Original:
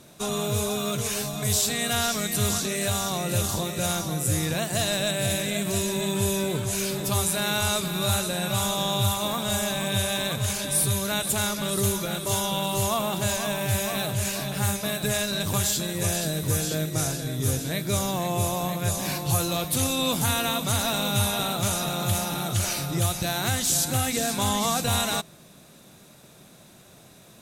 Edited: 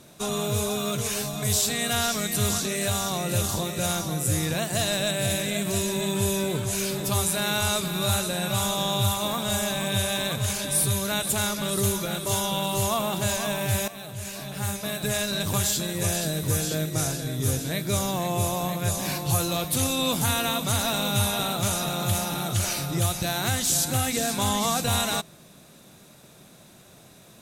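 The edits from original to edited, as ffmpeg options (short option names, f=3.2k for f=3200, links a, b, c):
-filter_complex "[0:a]asplit=2[a][b];[a]atrim=end=13.88,asetpts=PTS-STARTPTS,afade=t=out:st=13.876:d=0.004:c=hsin:silence=0.199526[c];[b]atrim=start=13.88,asetpts=PTS-STARTPTS,afade=t=in:d=1.43:silence=0.199526[d];[c][d]concat=n=2:v=0:a=1"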